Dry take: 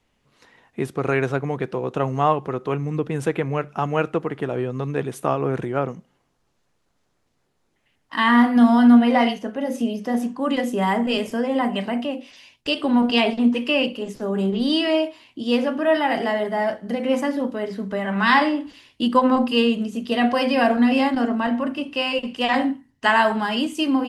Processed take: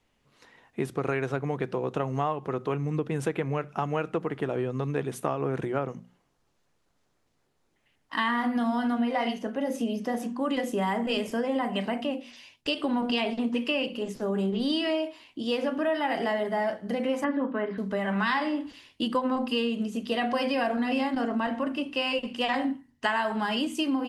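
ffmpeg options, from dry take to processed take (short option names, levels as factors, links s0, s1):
-filter_complex "[0:a]asettb=1/sr,asplit=3[s0][s1][s2];[s0]atrim=end=17.244[s3];[s1]atrim=start=17.24:end=17.78,asetpts=PTS-STARTPTS,afade=t=in:d=0.004:c=qsin,afade=t=out:st=0.536:d=0.004:c=qsin,highpass=130,equalizer=f=270:t=q:w=4:g=4,equalizer=f=1100:t=q:w=4:g=8,equalizer=f=1600:t=q:w=4:g=7,lowpass=f=2900:w=0.5412,lowpass=f=2900:w=1.3066[s4];[s2]atrim=start=17.776[s5];[s3][s4]acrossfade=d=0.004:c1=hsin:c2=qsin[s6];[s6][s5]acrossfade=d=0.004:c1=qsin:c2=hsin,bandreject=f=60:t=h:w=6,bandreject=f=120:t=h:w=6,bandreject=f=180:t=h:w=6,bandreject=f=240:t=h:w=6,acompressor=threshold=0.0891:ratio=6,volume=0.75"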